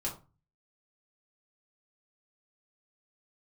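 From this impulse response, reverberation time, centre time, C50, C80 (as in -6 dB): 0.30 s, 20 ms, 10.0 dB, 15.0 dB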